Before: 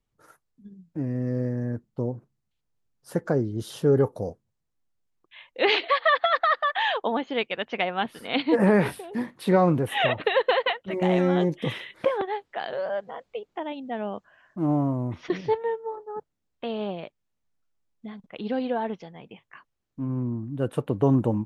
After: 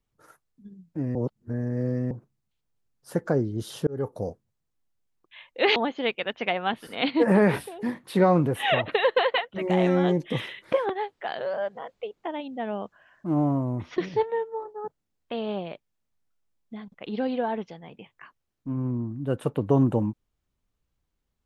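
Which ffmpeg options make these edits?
-filter_complex "[0:a]asplit=5[s0][s1][s2][s3][s4];[s0]atrim=end=1.152[s5];[s1]atrim=start=1.148:end=2.112,asetpts=PTS-STARTPTS,areverse[s6];[s2]atrim=start=2.108:end=3.87,asetpts=PTS-STARTPTS,afade=t=out:st=1.758:d=0.004:c=hsin[s7];[s3]atrim=start=3.87:end=5.762,asetpts=PTS-STARTPTS,afade=t=in:d=0.35[s8];[s4]atrim=start=7.078[s9];[s5][s6]acrossfade=d=0.004:c1=hsin:c2=hsin[s10];[s7][s8]concat=n=2:v=0:a=1[s11];[s10][s11]acrossfade=d=0.004:c1=hsin:c2=hsin[s12];[s12][s9]acrossfade=d=0.004:c1=hsin:c2=hsin"

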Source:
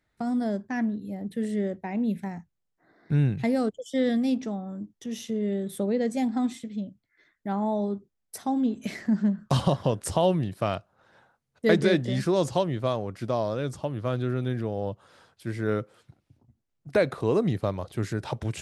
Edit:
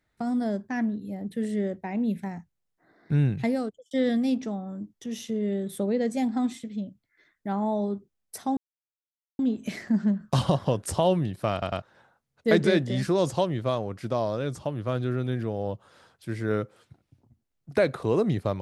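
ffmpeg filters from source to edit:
-filter_complex "[0:a]asplit=6[s0][s1][s2][s3][s4][s5];[s0]atrim=end=3.91,asetpts=PTS-STARTPTS,afade=t=out:st=3.45:d=0.46[s6];[s1]atrim=start=3.91:end=8.57,asetpts=PTS-STARTPTS,afade=t=in:d=0.004:c=hsin,afade=t=out:st=4.656:d=0.004:c=hsin,apad=pad_dur=0.82[s7];[s2]atrim=start=8.57:end=10.802,asetpts=PTS-STARTPTS,afade=t=in:d=0.004:c=hsin[s8];[s3]atrim=start=10.698:end=10.802[s9];[s4]atrim=start=10.698:end=10.802[s10];[s5]atrim=start=10.998[s11];[s6][s7][s8]concat=n=3:v=0:a=1[s12];[s12][s9]acrossfade=d=0.004:c1=hsin:c2=hsin[s13];[s13][s10]acrossfade=d=0.004:c1=hsin:c2=hsin[s14];[s14][s11]acrossfade=d=0.004:c1=hsin:c2=hsin"

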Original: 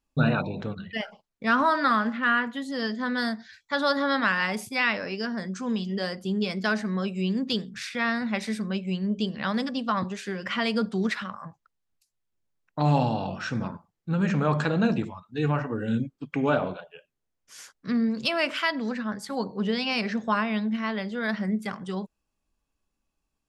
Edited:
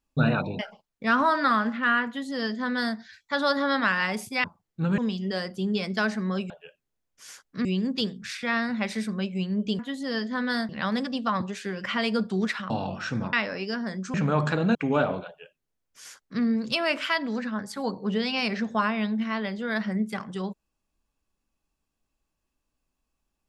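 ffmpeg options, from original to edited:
-filter_complex "[0:a]asplit=12[s0][s1][s2][s3][s4][s5][s6][s7][s8][s9][s10][s11];[s0]atrim=end=0.592[s12];[s1]atrim=start=0.988:end=4.842[s13];[s2]atrim=start=13.728:end=14.272[s14];[s3]atrim=start=5.648:end=7.172[s15];[s4]atrim=start=16.798:end=17.952[s16];[s5]atrim=start=7.168:end=9.312[s17];[s6]atrim=start=2.468:end=3.372[s18];[s7]atrim=start=9.308:end=11.322[s19];[s8]atrim=start=13.098:end=13.732[s20];[s9]atrim=start=4.838:end=5.652[s21];[s10]atrim=start=14.268:end=14.882[s22];[s11]atrim=start=16.278[s23];[s12][s13]acrossfade=d=0.004:c1=hsin:c2=hsin[s24];[s24][s14]acrossfade=d=0.004:c1=hsin:c2=hsin[s25];[s25][s15]acrossfade=d=0.004:c1=hsin:c2=hsin[s26];[s26][s16]acrossfade=d=0.004:c1=hsin:c2=hsin[s27];[s27][s17]acrossfade=d=0.004:c1=hsin:c2=hsin[s28];[s28][s18]acrossfade=d=0.004:c1=hsin:c2=hsin[s29];[s29][s19]acrossfade=d=0.004:c1=hsin:c2=hsin[s30];[s30][s20]acrossfade=d=0.004:c1=hsin:c2=hsin[s31];[s31][s21]acrossfade=d=0.004:c1=hsin:c2=hsin[s32];[s32][s22]acrossfade=d=0.004:c1=hsin:c2=hsin[s33];[s33][s23]acrossfade=d=0.004:c1=hsin:c2=hsin"

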